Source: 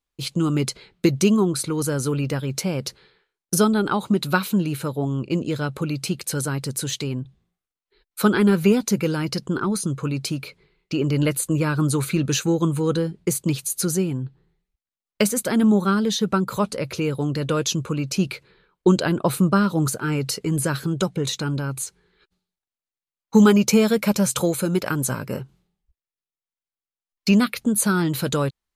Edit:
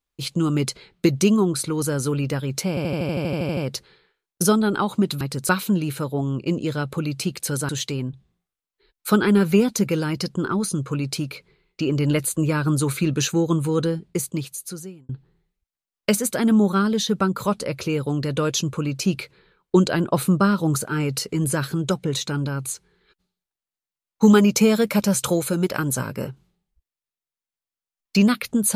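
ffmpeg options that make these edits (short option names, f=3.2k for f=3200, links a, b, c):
-filter_complex "[0:a]asplit=16[a][b][c][d][e][f][g][h][i][j][k][l][m][n][o][p];[a]atrim=end=2.772[q];[b]atrim=start=2.688:end=2.772[r];[c]atrim=start=2.688:end=2.772[s];[d]atrim=start=2.688:end=2.772[t];[e]atrim=start=2.688:end=2.772[u];[f]atrim=start=2.688:end=2.772[v];[g]atrim=start=2.688:end=2.772[w];[h]atrim=start=2.688:end=2.772[x];[i]atrim=start=2.688:end=2.772[y];[j]atrim=start=2.688:end=2.772[z];[k]atrim=start=2.688:end=2.772[aa];[l]atrim=start=2.688:end=4.332[ab];[m]atrim=start=6.528:end=6.812[ac];[n]atrim=start=4.328:end=6.532[ad];[o]atrim=start=6.808:end=14.21,asetpts=PTS-STARTPTS,afade=t=out:st=6.202:d=1.2[ae];[p]atrim=start=14.21,asetpts=PTS-STARTPTS,afade=t=in:d=0.004:c=hsin[af];[q][r]acrossfade=d=0.004:c1=hsin:c2=hsin[ag];[ag][s]acrossfade=d=0.004:c1=hsin:c2=hsin[ah];[ah][t]acrossfade=d=0.004:c1=hsin:c2=hsin[ai];[ai][u]acrossfade=d=0.004:c1=hsin:c2=hsin[aj];[aj][v]acrossfade=d=0.004:c1=hsin:c2=hsin[ak];[ak][w]acrossfade=d=0.004:c1=hsin:c2=hsin[al];[al][x]acrossfade=d=0.004:c1=hsin:c2=hsin[am];[am][y]acrossfade=d=0.004:c1=hsin:c2=hsin[an];[an][z]acrossfade=d=0.004:c1=hsin:c2=hsin[ao];[ao][aa]acrossfade=d=0.004:c1=hsin:c2=hsin[ap];[ap][ab]acrossfade=d=0.004:c1=hsin:c2=hsin[aq];[aq][ac]acrossfade=d=0.004:c1=hsin:c2=hsin[ar];[ar][ad]acrossfade=d=0.004:c1=hsin:c2=hsin[as];[ae][af]concat=n=2:v=0:a=1[at];[as][at]acrossfade=d=0.004:c1=hsin:c2=hsin"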